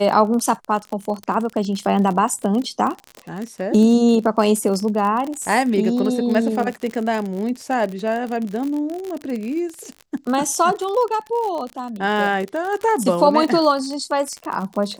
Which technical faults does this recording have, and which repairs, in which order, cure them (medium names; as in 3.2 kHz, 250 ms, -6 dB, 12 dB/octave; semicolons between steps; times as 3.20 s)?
crackle 46 per s -24 dBFS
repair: de-click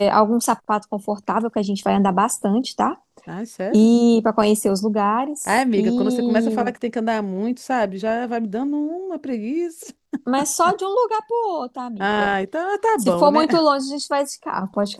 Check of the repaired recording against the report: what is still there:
nothing left